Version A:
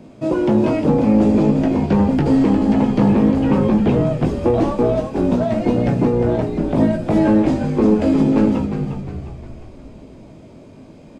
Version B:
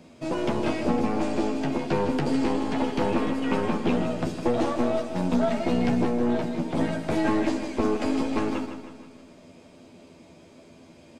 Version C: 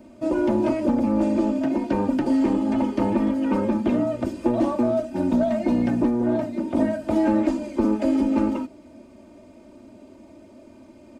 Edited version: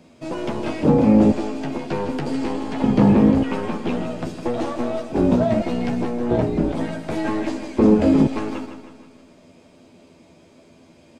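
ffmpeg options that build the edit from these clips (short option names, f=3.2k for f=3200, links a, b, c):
-filter_complex "[0:a]asplit=5[a][b][c][d][e];[1:a]asplit=6[f][g][h][i][j][k];[f]atrim=end=0.832[l];[a]atrim=start=0.828:end=1.322[m];[g]atrim=start=1.318:end=2.842[n];[b]atrim=start=2.838:end=3.432[o];[h]atrim=start=3.428:end=5.122[p];[c]atrim=start=5.118:end=5.622[q];[i]atrim=start=5.618:end=6.312[r];[d]atrim=start=6.308:end=6.722[s];[j]atrim=start=6.718:end=7.792[t];[e]atrim=start=7.788:end=8.272[u];[k]atrim=start=8.268[v];[l][m]acrossfade=d=0.004:c1=hsin:c2=hsin[w];[w][n]acrossfade=d=0.004:c1=hsin:c2=hsin[x];[x][o]acrossfade=d=0.004:c1=hsin:c2=hsin[y];[y][p]acrossfade=d=0.004:c1=hsin:c2=hsin[z];[z][q]acrossfade=d=0.004:c1=hsin:c2=hsin[aa];[aa][r]acrossfade=d=0.004:c1=hsin:c2=hsin[ab];[ab][s]acrossfade=d=0.004:c1=hsin:c2=hsin[ac];[ac][t]acrossfade=d=0.004:c1=hsin:c2=hsin[ad];[ad][u]acrossfade=d=0.004:c1=hsin:c2=hsin[ae];[ae][v]acrossfade=d=0.004:c1=hsin:c2=hsin"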